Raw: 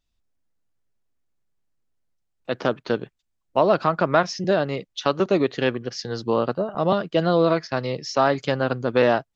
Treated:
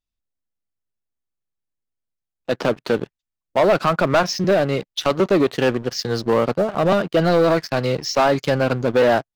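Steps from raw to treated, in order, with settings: waveshaping leveller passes 3; trim -4.5 dB

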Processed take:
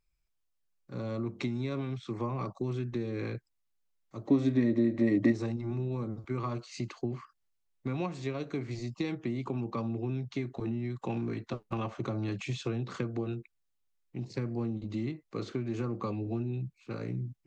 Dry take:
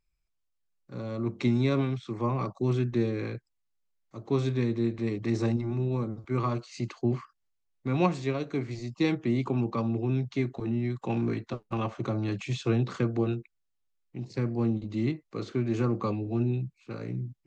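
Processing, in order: compression, threshold -30 dBFS, peak gain reduction 11 dB; 4.27–5.31 s: small resonant body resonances 280/580/1900 Hz, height 14 dB -> 18 dB, ringing for 45 ms

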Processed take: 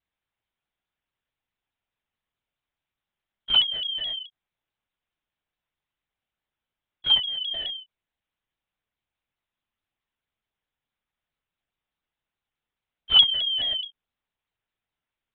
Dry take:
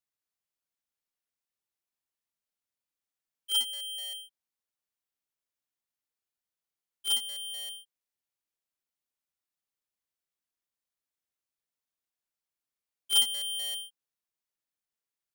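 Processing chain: LPC vocoder at 8 kHz whisper; vibrato with a chosen wave saw down 4.7 Hz, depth 100 cents; trim +9 dB

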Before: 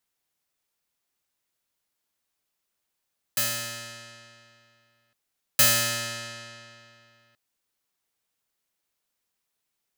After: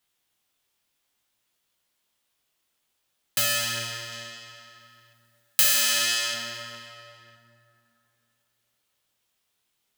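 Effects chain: peaking EQ 3.2 kHz +5 dB 0.61 oct; chorus 0.57 Hz, delay 15.5 ms, depth 7.6 ms; 4.12–6.34 s: tilt EQ +2 dB/octave; compression 3:1, threshold -28 dBFS, peak gain reduction 12 dB; plate-style reverb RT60 3 s, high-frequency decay 0.55×, DRR 6 dB; trim +7 dB

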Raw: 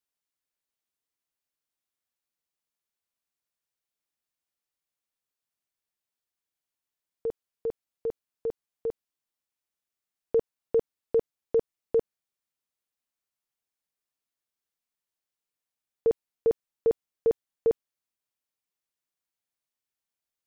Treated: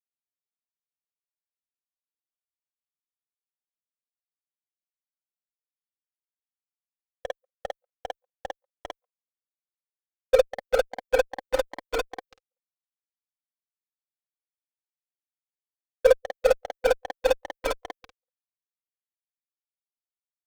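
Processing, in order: expander on every frequency bin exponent 3; on a send: feedback delay 191 ms, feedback 43%, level -23 dB; on the sum: level rider gain up to 11 dB; brick-wall FIR high-pass 500 Hz; in parallel at -8 dB: fuzz box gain 47 dB, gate -48 dBFS; on the sum: gate -53 dBFS, range -31 dB; comb 3.9 ms, depth 55%; Shepard-style flanger rising 0.34 Hz; trim +6 dB

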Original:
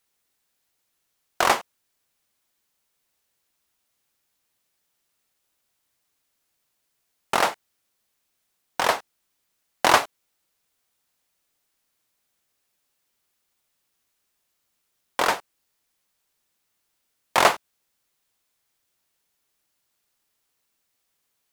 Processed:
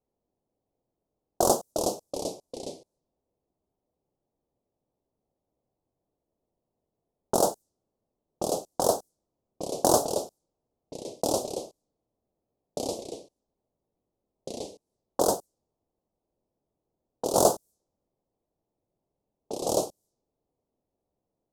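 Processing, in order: Chebyshev band-stop 600–7000 Hz, order 2; level-controlled noise filter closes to 1.1 kHz, open at -29 dBFS; in parallel at -1 dB: peak limiter -14 dBFS, peak gain reduction 7.5 dB; on the sum: ever faster or slower copies 183 ms, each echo -2 st, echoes 3, each echo -6 dB; dynamic bell 1 kHz, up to -5 dB, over -38 dBFS, Q 1.5

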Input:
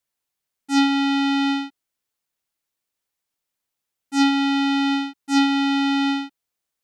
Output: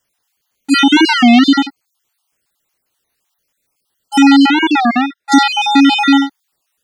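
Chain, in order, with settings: random holes in the spectrogram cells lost 47%; 4.46–5.32 s: tone controls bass -12 dB, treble -13 dB; loudness maximiser +17 dB; warped record 33 1/3 rpm, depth 250 cents; trim -1 dB

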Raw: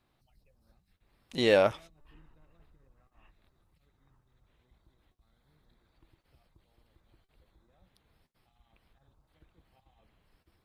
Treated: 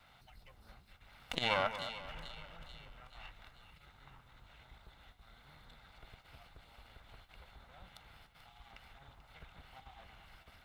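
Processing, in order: comb filter that takes the minimum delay 1.4 ms; high-order bell 1.8 kHz +8.5 dB 2.6 oct; compression 5:1, threshold -39 dBFS, peak gain reduction 21.5 dB; two-band feedback delay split 2.4 kHz, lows 221 ms, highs 437 ms, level -12 dB; transformer saturation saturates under 570 Hz; trim +8 dB

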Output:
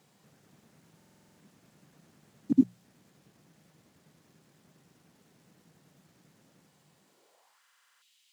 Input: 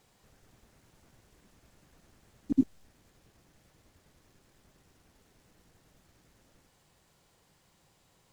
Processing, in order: high-pass sweep 160 Hz -> 3 kHz, 6.96–7.86 s; hum notches 60/120/180 Hz; buffer glitch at 0.96/7.60 s, samples 2048, times 8

